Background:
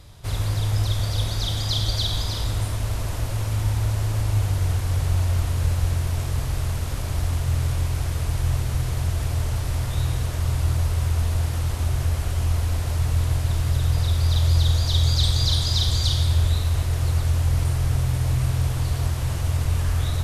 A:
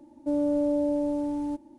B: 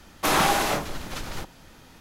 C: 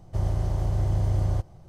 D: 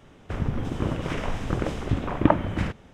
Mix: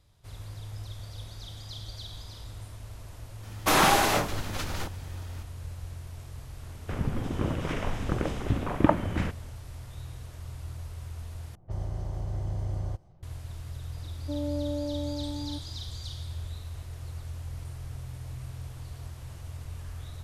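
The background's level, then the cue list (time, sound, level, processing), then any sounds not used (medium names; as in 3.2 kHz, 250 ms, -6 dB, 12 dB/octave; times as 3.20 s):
background -17.5 dB
3.43 s: add B
6.59 s: add D -2.5 dB
11.55 s: replace with C -8 dB + level-controlled noise filter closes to 1.2 kHz, open at -24 dBFS
14.02 s: add A -7.5 dB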